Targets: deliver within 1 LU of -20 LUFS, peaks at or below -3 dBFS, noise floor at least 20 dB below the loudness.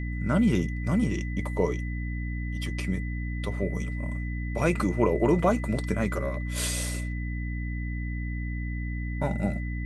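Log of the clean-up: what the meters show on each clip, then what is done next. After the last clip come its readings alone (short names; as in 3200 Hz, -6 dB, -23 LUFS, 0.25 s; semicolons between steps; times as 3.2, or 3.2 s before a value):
hum 60 Hz; harmonics up to 300 Hz; hum level -29 dBFS; steady tone 2000 Hz; tone level -41 dBFS; loudness -29.0 LUFS; peak -10.0 dBFS; loudness target -20.0 LUFS
-> de-hum 60 Hz, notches 5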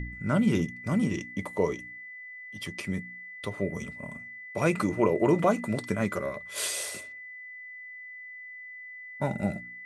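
hum none; steady tone 2000 Hz; tone level -41 dBFS
-> notch 2000 Hz, Q 30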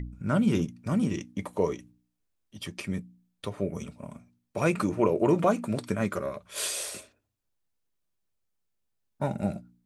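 steady tone none; loudness -29.0 LUFS; peak -10.0 dBFS; loudness target -20.0 LUFS
-> gain +9 dB; limiter -3 dBFS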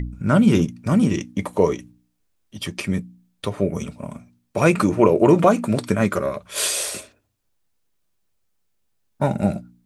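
loudness -20.5 LUFS; peak -3.0 dBFS; noise floor -69 dBFS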